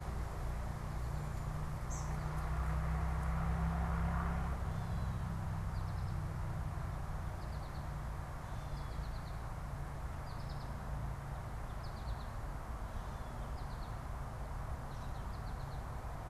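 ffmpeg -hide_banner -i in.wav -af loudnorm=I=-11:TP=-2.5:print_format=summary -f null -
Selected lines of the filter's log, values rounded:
Input Integrated:    -42.5 LUFS
Input True Peak:     -24.5 dBTP
Input LRA:             6.3 LU
Input Threshold:     -52.5 LUFS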